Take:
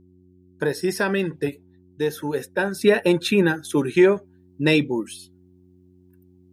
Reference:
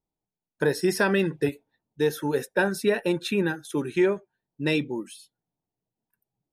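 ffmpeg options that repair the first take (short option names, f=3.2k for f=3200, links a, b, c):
-af "bandreject=f=90.7:t=h:w=4,bandreject=f=181.4:t=h:w=4,bandreject=f=272.1:t=h:w=4,bandreject=f=362.8:t=h:w=4,asetnsamples=n=441:p=0,asendcmd='2.81 volume volume -6.5dB',volume=0dB"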